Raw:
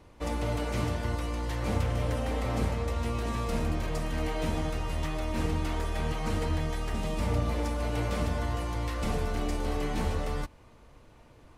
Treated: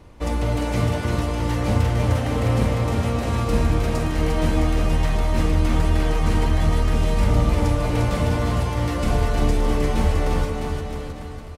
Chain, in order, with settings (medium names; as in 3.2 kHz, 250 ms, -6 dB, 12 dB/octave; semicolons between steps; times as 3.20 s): bass shelf 220 Hz +4.5 dB; on a send: bouncing-ball echo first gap 350 ms, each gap 0.9×, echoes 5; on the sum: trim +5.5 dB